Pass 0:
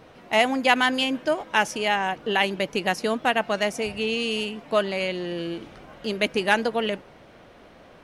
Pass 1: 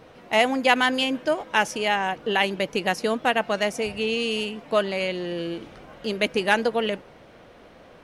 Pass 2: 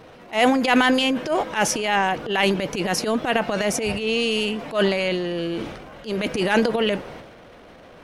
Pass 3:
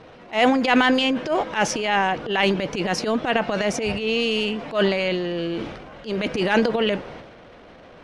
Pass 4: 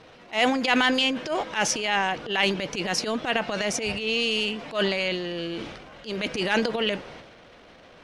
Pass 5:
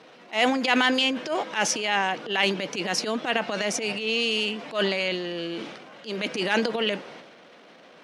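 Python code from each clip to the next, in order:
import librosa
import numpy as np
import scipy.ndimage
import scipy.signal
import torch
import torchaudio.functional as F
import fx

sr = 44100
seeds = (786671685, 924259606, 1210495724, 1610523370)

y1 = fx.peak_eq(x, sr, hz=490.0, db=3.5, octaves=0.21)
y2 = fx.transient(y1, sr, attack_db=-12, sustain_db=8)
y2 = F.gain(torch.from_numpy(y2), 3.5).numpy()
y3 = scipy.signal.sosfilt(scipy.signal.butter(2, 5800.0, 'lowpass', fs=sr, output='sos'), y2)
y4 = fx.high_shelf(y3, sr, hz=2200.0, db=9.5)
y4 = F.gain(torch.from_numpy(y4), -6.0).numpy()
y5 = scipy.signal.sosfilt(scipy.signal.butter(4, 170.0, 'highpass', fs=sr, output='sos'), y4)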